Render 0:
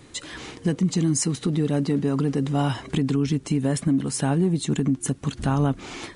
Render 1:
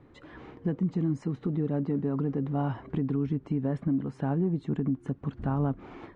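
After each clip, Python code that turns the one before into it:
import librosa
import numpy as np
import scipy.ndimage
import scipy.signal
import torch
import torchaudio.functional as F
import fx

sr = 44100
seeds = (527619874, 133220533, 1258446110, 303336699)

y = scipy.signal.sosfilt(scipy.signal.butter(2, 1300.0, 'lowpass', fs=sr, output='sos'), x)
y = F.gain(torch.from_numpy(y), -6.0).numpy()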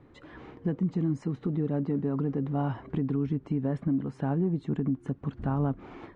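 y = x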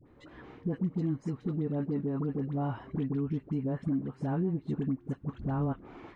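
y = fx.dispersion(x, sr, late='highs', ms=63.0, hz=900.0)
y = F.gain(torch.from_numpy(y), -3.0).numpy()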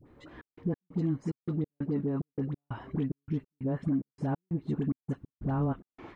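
y = fx.step_gate(x, sr, bpm=183, pattern='xxxxx..xx..', floor_db=-60.0, edge_ms=4.5)
y = F.gain(torch.from_numpy(y), 1.5).numpy()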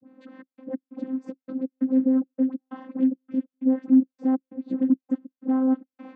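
y = fx.vocoder(x, sr, bands=16, carrier='saw', carrier_hz=261.0)
y = F.gain(torch.from_numpy(y), 9.0).numpy()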